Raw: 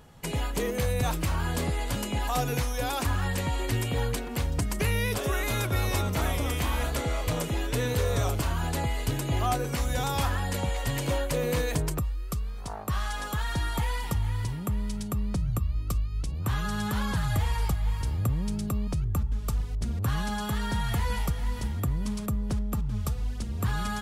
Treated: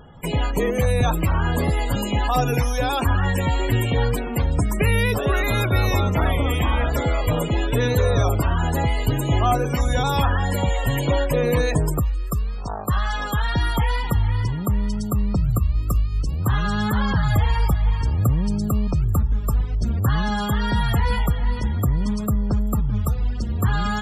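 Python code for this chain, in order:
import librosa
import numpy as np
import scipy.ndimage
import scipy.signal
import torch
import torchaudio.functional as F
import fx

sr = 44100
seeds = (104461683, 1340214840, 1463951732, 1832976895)

y = fx.wow_flutter(x, sr, seeds[0], rate_hz=2.1, depth_cents=21.0)
y = fx.echo_wet_highpass(y, sr, ms=388, feedback_pct=72, hz=2100.0, wet_db=-24)
y = fx.spec_topn(y, sr, count=64)
y = F.gain(torch.from_numpy(y), 8.0).numpy()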